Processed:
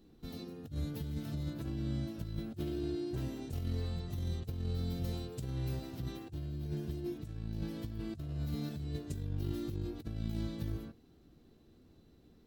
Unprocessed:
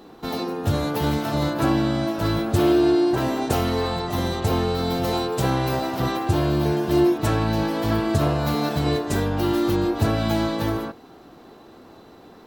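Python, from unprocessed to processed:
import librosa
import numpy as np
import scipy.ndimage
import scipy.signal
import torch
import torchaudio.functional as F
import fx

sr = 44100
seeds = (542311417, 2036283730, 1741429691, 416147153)

y = fx.tone_stack(x, sr, knobs='10-0-1')
y = fx.over_compress(y, sr, threshold_db=-38.0, ratio=-0.5)
y = fx.doubler(y, sr, ms=13.0, db=-14)
y = y * librosa.db_to_amplitude(1.5)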